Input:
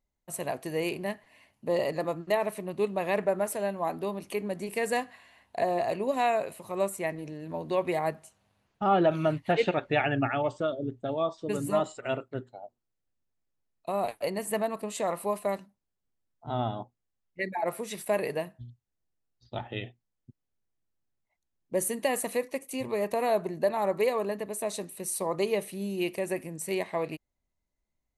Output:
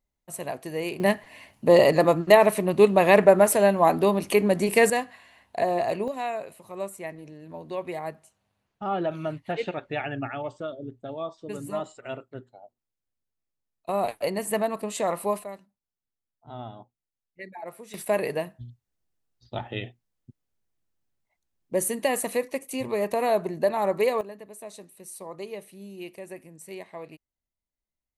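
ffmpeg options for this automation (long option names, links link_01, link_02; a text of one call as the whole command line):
ffmpeg -i in.wav -af "asetnsamples=nb_out_samples=441:pad=0,asendcmd='1 volume volume 11.5dB;4.9 volume volume 3dB;6.08 volume volume -4.5dB;13.89 volume volume 3.5dB;15.44 volume volume -8.5dB;17.94 volume volume 3dB;24.21 volume volume -9dB',volume=0dB" out.wav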